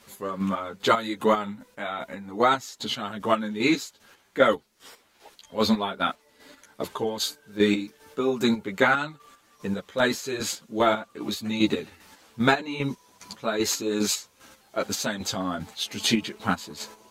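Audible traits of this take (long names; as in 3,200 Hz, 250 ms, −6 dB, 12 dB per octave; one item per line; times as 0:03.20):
chopped level 2.5 Hz, depth 60%, duty 35%
a shimmering, thickened sound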